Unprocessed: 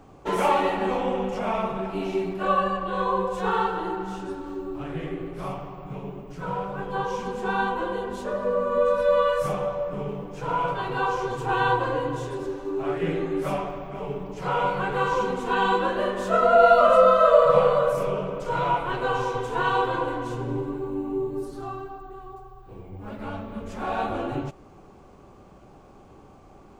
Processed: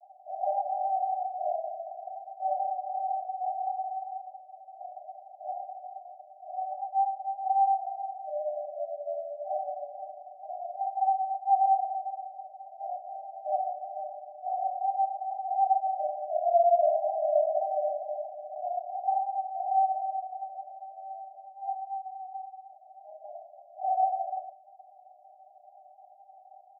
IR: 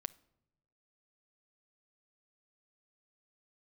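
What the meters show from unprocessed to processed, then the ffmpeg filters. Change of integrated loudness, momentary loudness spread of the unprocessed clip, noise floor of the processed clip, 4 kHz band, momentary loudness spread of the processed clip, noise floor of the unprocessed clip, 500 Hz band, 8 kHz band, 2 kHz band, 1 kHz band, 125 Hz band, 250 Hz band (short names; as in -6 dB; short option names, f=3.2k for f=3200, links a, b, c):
-6.0 dB, 16 LU, -55 dBFS, under -40 dB, 18 LU, -50 dBFS, -9.5 dB, n/a, under -40 dB, -2.5 dB, under -40 dB, under -40 dB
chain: -af "aecho=1:1:3.8:0.69,aeval=exprs='(tanh(6.31*val(0)+0.45)-tanh(0.45))/6.31':c=same,asuperpass=centerf=690:order=20:qfactor=3.6,volume=5dB"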